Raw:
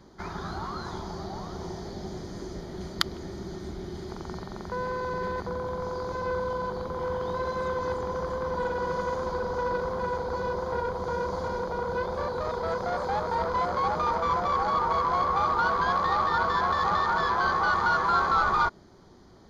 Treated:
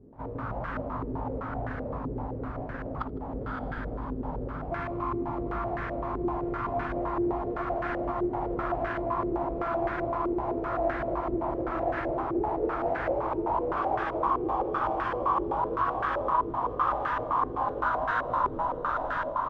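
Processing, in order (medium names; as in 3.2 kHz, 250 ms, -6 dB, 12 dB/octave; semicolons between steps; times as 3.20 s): square wave that keeps the level; bass shelf 130 Hz +4 dB; doubling 13 ms -8 dB; echo that smears into a reverb 547 ms, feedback 50%, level -6 dB; formant-preserving pitch shift -6.5 st; compression, threshold -23 dBFS, peak gain reduction 8.5 dB; multi-tap echo 77/158 ms -7.5/-3.5 dB; step-sequenced low-pass 7.8 Hz 390–1600 Hz; trim -8.5 dB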